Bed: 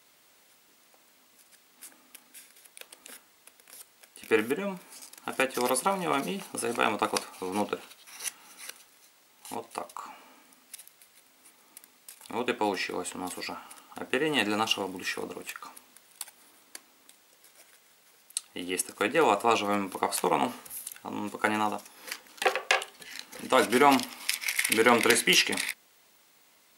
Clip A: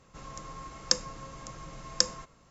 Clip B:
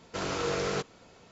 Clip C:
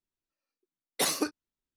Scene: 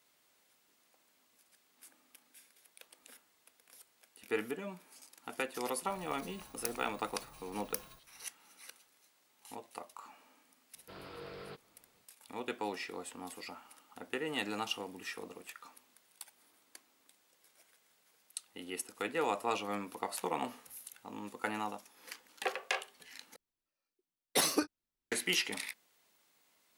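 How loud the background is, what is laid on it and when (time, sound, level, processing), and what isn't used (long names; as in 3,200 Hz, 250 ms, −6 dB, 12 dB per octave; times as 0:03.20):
bed −10 dB
0:05.74: mix in A −14.5 dB + samples in bit-reversed order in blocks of 16 samples
0:10.74: mix in B −17 dB + downsampling to 11,025 Hz
0:23.36: overwrite with C −1.5 dB + notch filter 6,900 Hz, Q 14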